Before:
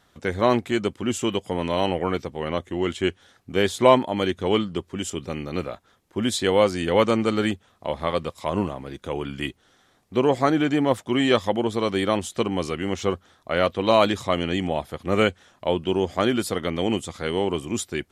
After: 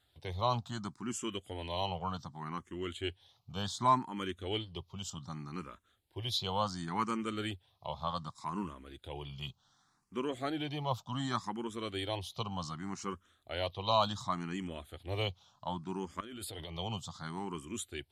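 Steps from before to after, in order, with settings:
octave-band graphic EQ 125/250/500/1,000/2,000/4,000 Hz +5/−4/−9/+6/−7/+6 dB
0:16.20–0:16.79: compressor whose output falls as the input rises −33 dBFS, ratio −1
frequency shifter mixed with the dry sound +0.67 Hz
level −8.5 dB

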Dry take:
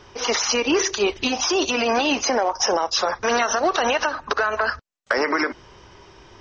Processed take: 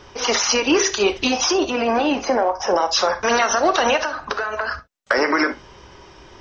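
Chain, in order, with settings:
0:01.53–0:02.76: low-pass filter 1,400 Hz 6 dB per octave
0:03.96–0:04.71: downward compressor 4 to 1, threshold −24 dBFS, peak gain reduction 6.5 dB
reverb whose tail is shaped and stops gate 90 ms flat, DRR 9.5 dB
level +2.5 dB

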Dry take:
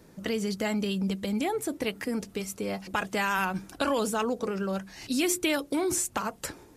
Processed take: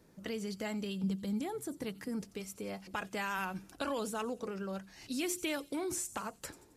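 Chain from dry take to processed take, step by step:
0:01.03–0:02.22: graphic EQ with 15 bands 160 Hz +9 dB, 630 Hz −4 dB, 2,500 Hz −7 dB
delay with a high-pass on its return 89 ms, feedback 45%, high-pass 4,500 Hz, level −14 dB
level −9 dB

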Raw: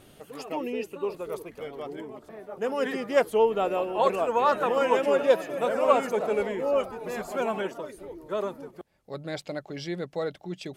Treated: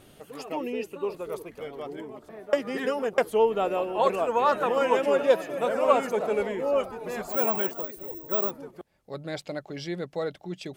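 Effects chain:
0:02.53–0:03.18: reverse
0:07.29–0:08.51: bad sample-rate conversion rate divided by 2×, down filtered, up zero stuff

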